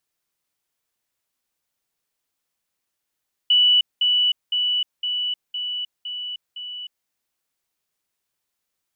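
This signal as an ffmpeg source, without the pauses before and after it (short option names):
-f lavfi -i "aevalsrc='pow(10,(-12.5-3*floor(t/0.51))/20)*sin(2*PI*2960*t)*clip(min(mod(t,0.51),0.31-mod(t,0.51))/0.005,0,1)':d=3.57:s=44100"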